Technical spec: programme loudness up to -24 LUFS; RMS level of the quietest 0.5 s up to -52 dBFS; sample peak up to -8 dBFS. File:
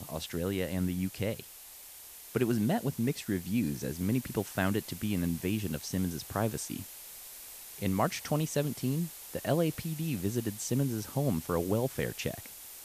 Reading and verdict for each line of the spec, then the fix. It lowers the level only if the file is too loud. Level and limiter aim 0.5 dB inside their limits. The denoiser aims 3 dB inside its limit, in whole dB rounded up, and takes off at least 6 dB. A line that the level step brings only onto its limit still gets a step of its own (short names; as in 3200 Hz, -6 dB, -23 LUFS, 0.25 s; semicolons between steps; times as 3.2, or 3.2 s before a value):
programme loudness -32.5 LUFS: OK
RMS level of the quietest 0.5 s -50 dBFS: fail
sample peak -14.5 dBFS: OK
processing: denoiser 6 dB, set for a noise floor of -50 dBFS